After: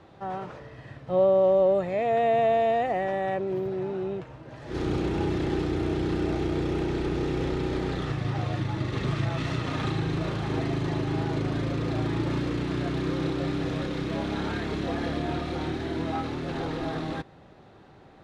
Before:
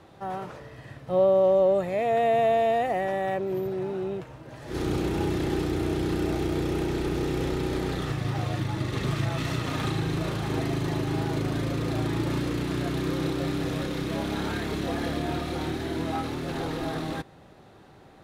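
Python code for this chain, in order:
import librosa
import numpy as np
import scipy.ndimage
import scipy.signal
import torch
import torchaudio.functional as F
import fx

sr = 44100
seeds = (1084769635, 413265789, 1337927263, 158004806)

y = fx.air_absorb(x, sr, metres=81.0)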